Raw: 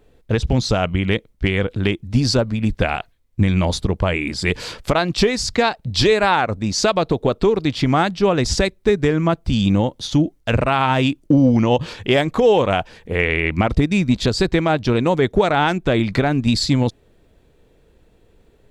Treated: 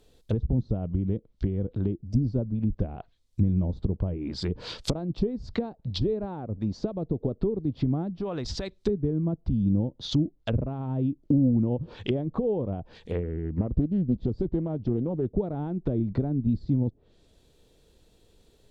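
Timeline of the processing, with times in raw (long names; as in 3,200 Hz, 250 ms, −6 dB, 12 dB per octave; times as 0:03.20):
0:01.95–0:02.26: gain on a spectral selection 740–4,600 Hz −20 dB
0:08.08–0:08.81: downward compressor 8 to 1, threshold −20 dBFS
0:13.23–0:15.26: highs frequency-modulated by the lows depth 0.57 ms
whole clip: treble cut that deepens with the level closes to 330 Hz, closed at −15.5 dBFS; high shelf with overshoot 2,900 Hz +9 dB, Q 1.5; level −6.5 dB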